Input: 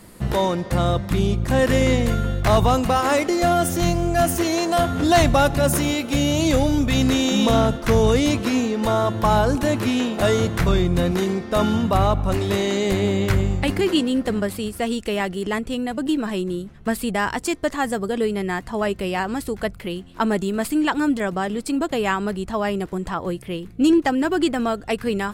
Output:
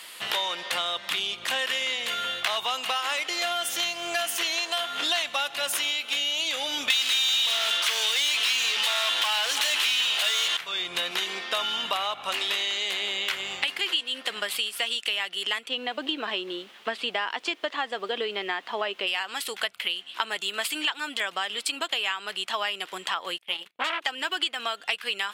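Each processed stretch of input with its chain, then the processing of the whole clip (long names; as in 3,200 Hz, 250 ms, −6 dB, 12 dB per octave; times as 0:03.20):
0:06.90–0:10.57: parametric band 9,800 Hz +11.5 dB 2.7 octaves + mid-hump overdrive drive 33 dB, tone 7,100 Hz, clips at −4 dBFS
0:15.68–0:19.06: Chebyshev band-pass filter 260–4,400 Hz + tilt shelving filter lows +8 dB, about 1,100 Hz + background noise brown −44 dBFS
0:23.38–0:24.01: noise gate −39 dBFS, range −32 dB + saturating transformer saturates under 1,200 Hz
whole clip: high-pass filter 1,000 Hz 12 dB per octave; parametric band 3,100 Hz +14 dB 0.92 octaves; downward compressor 6 to 1, threshold −29 dBFS; level +4 dB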